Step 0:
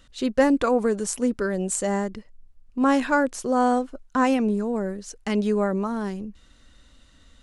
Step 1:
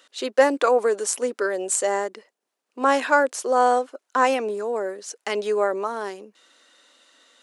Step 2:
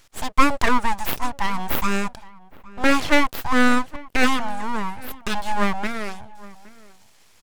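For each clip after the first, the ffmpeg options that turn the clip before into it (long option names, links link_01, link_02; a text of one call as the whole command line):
ffmpeg -i in.wav -af "highpass=frequency=380:width=0.5412,highpass=frequency=380:width=1.3066,volume=4dB" out.wav
ffmpeg -i in.wav -filter_complex "[0:a]aeval=exprs='abs(val(0))':channel_layout=same,asplit=2[link_01][link_02];[link_02]adelay=816.3,volume=-20dB,highshelf=frequency=4000:gain=-18.4[link_03];[link_01][link_03]amix=inputs=2:normalize=0,volume=3.5dB" out.wav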